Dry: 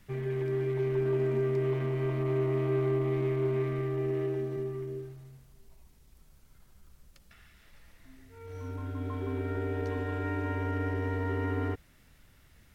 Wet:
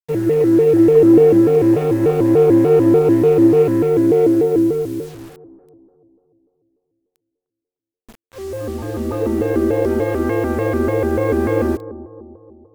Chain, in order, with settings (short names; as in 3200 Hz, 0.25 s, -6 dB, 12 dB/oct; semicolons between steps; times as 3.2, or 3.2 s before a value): gate -50 dBFS, range -9 dB; bell 450 Hz +12.5 dB 1.5 oct; requantised 8-bit, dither none; on a send: analogue delay 0.303 s, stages 2048, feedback 50%, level -15 dB; on the sum: shaped vibrato square 3.4 Hz, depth 250 cents; gain +7.5 dB